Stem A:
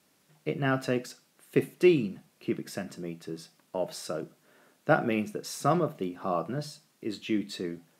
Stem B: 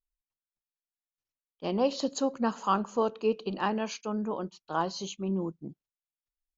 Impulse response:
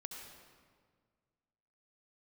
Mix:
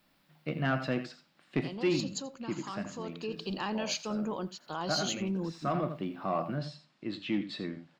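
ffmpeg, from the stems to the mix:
-filter_complex "[0:a]lowpass=frequency=5500:width=0.5412,lowpass=frequency=5500:width=1.3066,equalizer=frequency=420:width=3.7:gain=-10.5,volume=0dB,asplit=2[link_01][link_02];[link_02]volume=-12dB[link_03];[1:a]lowshelf=frequency=190:gain=9.5,alimiter=limit=-22.5dB:level=0:latency=1:release=25,crystalizer=i=7:c=0,volume=4.5dB,afade=type=out:start_time=0.85:duration=0.29:silence=0.354813,afade=type=in:start_time=2.89:duration=0.6:silence=0.421697,asplit=3[link_04][link_05][link_06];[link_05]volume=-20dB[link_07];[link_06]apad=whole_len=352742[link_08];[link_01][link_08]sidechaincompress=threshold=-38dB:ratio=8:attack=28:release=628[link_09];[link_03][link_07]amix=inputs=2:normalize=0,aecho=0:1:84:1[link_10];[link_09][link_04][link_10]amix=inputs=3:normalize=0,equalizer=frequency=6100:width=3.5:gain=-8,asoftclip=type=tanh:threshold=-19.5dB"

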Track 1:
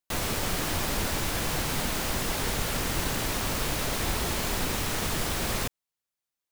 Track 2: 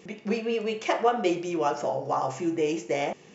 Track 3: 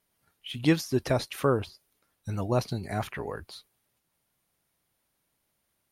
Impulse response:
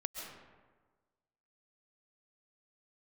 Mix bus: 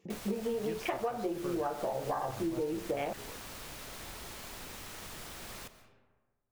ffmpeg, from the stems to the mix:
-filter_complex "[0:a]lowshelf=frequency=460:gain=-5,volume=-18dB,asplit=2[link_01][link_02];[link_02]volume=-5.5dB[link_03];[1:a]afwtdn=0.0224,volume=-0.5dB[link_04];[2:a]volume=-15.5dB[link_05];[3:a]atrim=start_sample=2205[link_06];[link_03][link_06]afir=irnorm=-1:irlink=0[link_07];[link_01][link_04][link_05][link_07]amix=inputs=4:normalize=0,acompressor=threshold=-30dB:ratio=12"

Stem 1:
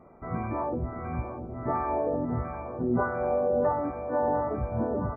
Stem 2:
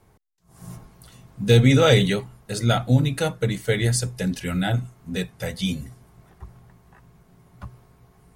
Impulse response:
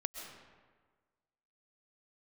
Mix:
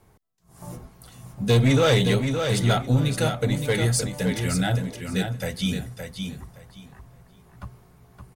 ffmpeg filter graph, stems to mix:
-filter_complex "[0:a]acompressor=threshold=-37dB:ratio=3,volume=-6.5dB[link_01];[1:a]highshelf=frequency=9000:gain=2.5,asoftclip=type=tanh:threshold=-12.5dB,volume=0dB,asplit=3[link_02][link_03][link_04];[link_03]volume=-6.5dB[link_05];[link_04]apad=whole_len=227589[link_06];[link_01][link_06]sidechaingate=range=-48dB:threshold=-44dB:ratio=16:detection=peak[link_07];[link_05]aecho=0:1:568|1136|1704:1|0.2|0.04[link_08];[link_07][link_02][link_08]amix=inputs=3:normalize=0"

